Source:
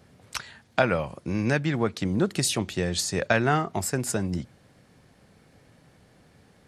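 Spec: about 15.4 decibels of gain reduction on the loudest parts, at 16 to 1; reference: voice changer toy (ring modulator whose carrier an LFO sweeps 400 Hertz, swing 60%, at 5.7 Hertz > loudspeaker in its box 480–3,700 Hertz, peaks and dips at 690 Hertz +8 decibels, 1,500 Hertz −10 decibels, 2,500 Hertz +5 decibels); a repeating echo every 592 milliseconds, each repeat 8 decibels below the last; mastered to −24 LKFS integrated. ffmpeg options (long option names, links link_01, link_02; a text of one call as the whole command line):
ffmpeg -i in.wav -af "acompressor=threshold=-32dB:ratio=16,aecho=1:1:592|1184|1776|2368|2960:0.398|0.159|0.0637|0.0255|0.0102,aeval=exprs='val(0)*sin(2*PI*400*n/s+400*0.6/5.7*sin(2*PI*5.7*n/s))':channel_layout=same,highpass=480,equalizer=frequency=690:width_type=q:width=4:gain=8,equalizer=frequency=1500:width_type=q:width=4:gain=-10,equalizer=frequency=2500:width_type=q:width=4:gain=5,lowpass=frequency=3700:width=0.5412,lowpass=frequency=3700:width=1.3066,volume=18dB" out.wav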